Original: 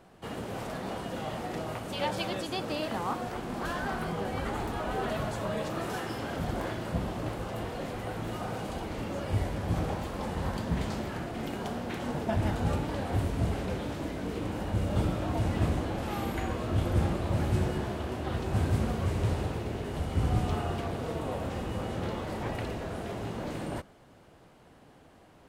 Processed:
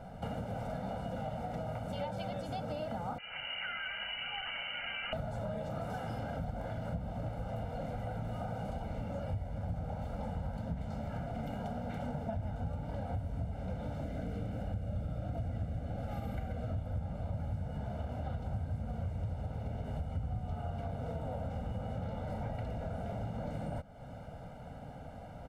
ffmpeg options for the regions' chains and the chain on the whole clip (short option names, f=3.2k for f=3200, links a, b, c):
-filter_complex "[0:a]asettb=1/sr,asplit=3[a][b][c];[a]atrim=end=3.184[d];[b]atrim=start=3.18:end=5.13,asetpts=PTS-STARTPTS,afade=t=in:d=0.004:c=qsin,afade=t=out:st=1.946:d=0.004:c=qsin,highpass=f=150:p=1,equalizer=f=500:t=o:w=1.3:g=-8.5,lowpass=f=2.6k:t=q:w=0.5098,lowpass=f=2.6k:t=q:w=0.6013,lowpass=f=2.6k:t=q:w=0.9,lowpass=f=2.6k:t=q:w=2.563,afreqshift=-3100[e];[c]atrim=start=5.126[f];[d][e]acrossfade=d=0.004:c1=hsin:c2=qsin[g];[g][f]acrossfade=d=0.004:c1=qsin:c2=hsin,asettb=1/sr,asplit=3[h][i][j];[h]atrim=end=14.014[k];[i]atrim=start=14.01:end=16.73,asetpts=PTS-STARTPTS,afade=t=in:d=0.004:c=qsin,afade=t=out:st=2.716:d=0.004:c=qsin,equalizer=f=940:t=o:w=0.33:g=-9.5,aecho=1:1:132:0.473,atrim=end_sample=119952[l];[j]atrim=start=16.726[m];[k][l]acrossfade=d=0.004:c1=hsin:c2=qsin[n];[n][m]acrossfade=d=0.004:c1=qsin:c2=hsin,tiltshelf=f=1.3k:g=7,aecho=1:1:1.4:0.96,acompressor=threshold=-38dB:ratio=6,volume=1.5dB"